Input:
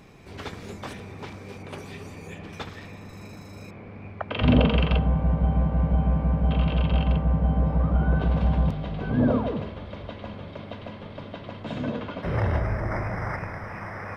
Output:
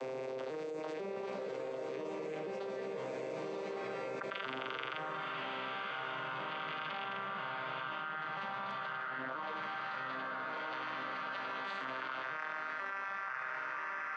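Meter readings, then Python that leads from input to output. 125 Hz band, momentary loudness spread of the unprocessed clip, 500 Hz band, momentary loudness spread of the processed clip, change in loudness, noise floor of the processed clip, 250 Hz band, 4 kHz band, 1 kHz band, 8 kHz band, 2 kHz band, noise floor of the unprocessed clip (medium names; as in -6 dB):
-32.0 dB, 17 LU, -8.0 dB, 2 LU, -15.0 dB, -42 dBFS, -21.5 dB, -7.0 dB, -3.5 dB, no reading, -1.0 dB, -42 dBFS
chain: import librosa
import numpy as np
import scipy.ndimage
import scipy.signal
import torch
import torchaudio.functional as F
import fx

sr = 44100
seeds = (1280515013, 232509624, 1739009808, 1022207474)

y = fx.vocoder_arp(x, sr, chord='minor triad', root=48, every_ms=492)
y = fx.high_shelf(y, sr, hz=4600.0, db=5.0)
y = fx.filter_sweep_highpass(y, sr, from_hz=490.0, to_hz=1400.0, start_s=3.23, end_s=3.96, q=3.2)
y = fx.echo_diffused(y, sr, ms=1027, feedback_pct=53, wet_db=-3)
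y = fx.env_flatten(y, sr, amount_pct=100)
y = F.gain(torch.from_numpy(y), -5.5).numpy()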